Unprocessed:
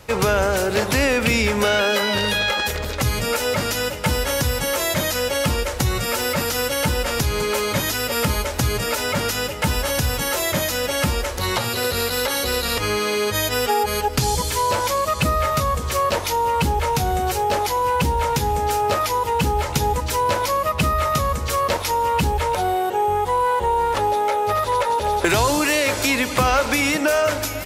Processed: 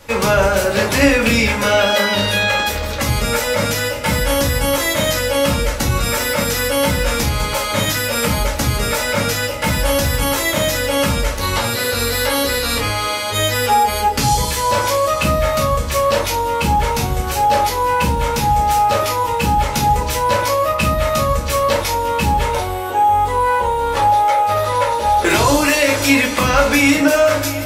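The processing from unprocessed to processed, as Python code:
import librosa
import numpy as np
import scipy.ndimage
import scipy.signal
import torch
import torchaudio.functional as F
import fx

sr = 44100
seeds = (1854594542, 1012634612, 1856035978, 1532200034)

y = fx.low_shelf(x, sr, hz=370.0, db=-3.5)
y = fx.room_shoebox(y, sr, seeds[0], volume_m3=200.0, walls='furnished', distance_m=2.4)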